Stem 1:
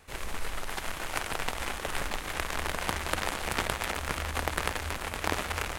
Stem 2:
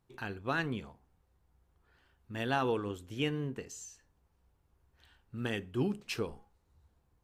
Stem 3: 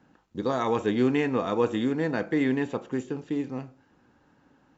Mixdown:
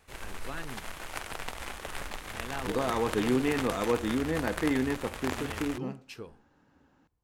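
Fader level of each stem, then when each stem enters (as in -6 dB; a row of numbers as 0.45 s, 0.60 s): -5.5 dB, -8.0 dB, -3.5 dB; 0.00 s, 0.00 s, 2.30 s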